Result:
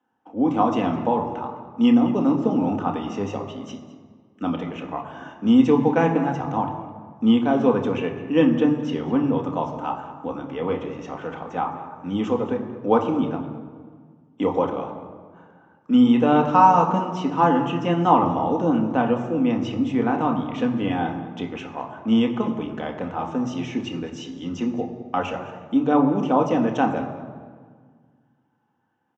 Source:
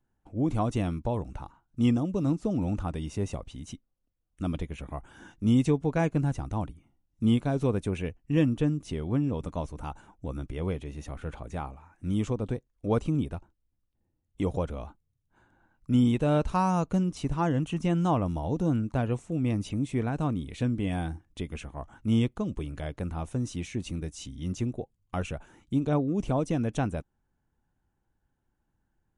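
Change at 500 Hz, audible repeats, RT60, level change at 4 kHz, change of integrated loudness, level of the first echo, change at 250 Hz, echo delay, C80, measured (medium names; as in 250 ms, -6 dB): +9.0 dB, 1, 1.7 s, +7.5 dB, +7.5 dB, -16.5 dB, +8.0 dB, 210 ms, 9.0 dB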